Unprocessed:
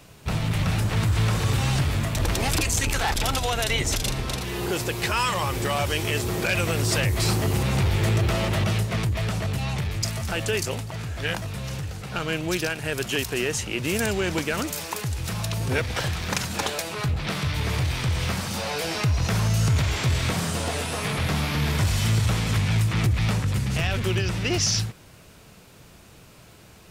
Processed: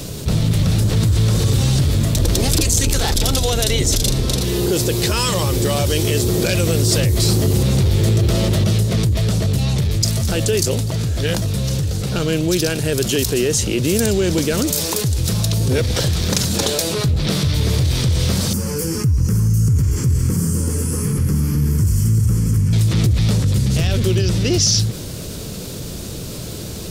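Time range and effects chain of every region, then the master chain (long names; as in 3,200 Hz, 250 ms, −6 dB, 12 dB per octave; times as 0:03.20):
0:18.53–0:22.73: parametric band 2,200 Hz −10.5 dB 1.8 octaves + phaser with its sweep stopped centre 1,600 Hz, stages 4
whole clip: flat-topped bell 1,400 Hz −11 dB 2.3 octaves; envelope flattener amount 50%; level +5.5 dB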